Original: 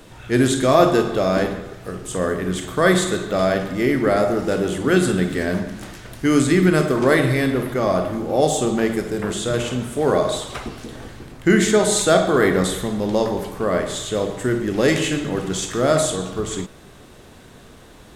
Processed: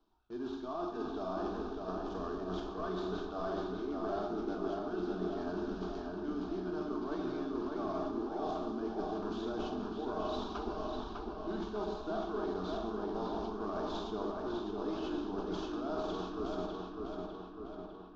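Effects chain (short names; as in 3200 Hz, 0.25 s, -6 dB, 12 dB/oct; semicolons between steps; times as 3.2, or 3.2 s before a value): CVSD 32 kbps; air absorption 170 m; fixed phaser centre 530 Hz, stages 6; reverse; compressor 10:1, threshold -30 dBFS, peak gain reduction 17 dB; reverse; gate with hold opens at -37 dBFS; fifteen-band EQ 100 Hz -10 dB, 250 Hz -4 dB, 2500 Hz -5 dB; on a send: darkening echo 0.601 s, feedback 63%, low-pass 3900 Hz, level -3 dB; on the sum: gain -4 dB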